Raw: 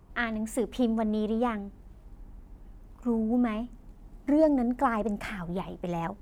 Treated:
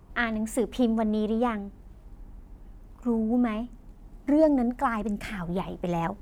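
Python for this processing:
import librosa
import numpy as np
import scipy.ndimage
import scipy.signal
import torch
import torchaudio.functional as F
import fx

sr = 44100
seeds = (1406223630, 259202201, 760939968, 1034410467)

p1 = fx.peak_eq(x, sr, hz=fx.line((4.69, 280.0), (5.32, 1200.0)), db=-10.0, octaves=1.2, at=(4.69, 5.32), fade=0.02)
p2 = fx.rider(p1, sr, range_db=3, speed_s=2.0)
p3 = p1 + (p2 * 10.0 ** (2.0 / 20.0))
y = p3 * 10.0 ** (-5.0 / 20.0)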